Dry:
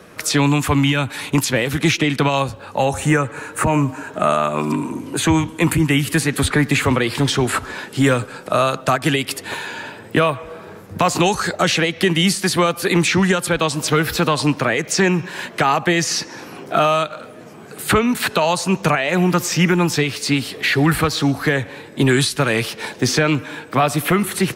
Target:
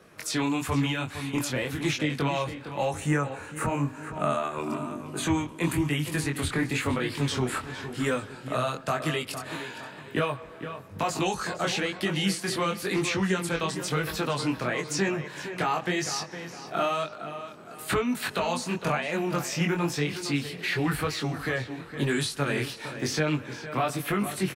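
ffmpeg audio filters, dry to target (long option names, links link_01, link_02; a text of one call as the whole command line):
ffmpeg -i in.wav -filter_complex "[0:a]asplit=2[link_01][link_02];[link_02]adelay=460,lowpass=frequency=3700:poles=1,volume=-10dB,asplit=2[link_03][link_04];[link_04]adelay=460,lowpass=frequency=3700:poles=1,volume=0.37,asplit=2[link_05][link_06];[link_06]adelay=460,lowpass=frequency=3700:poles=1,volume=0.37,asplit=2[link_07][link_08];[link_08]adelay=460,lowpass=frequency=3700:poles=1,volume=0.37[link_09];[link_01][link_03][link_05][link_07][link_09]amix=inputs=5:normalize=0,flanger=delay=19.5:depth=4.8:speed=0.99,volume=-8dB" out.wav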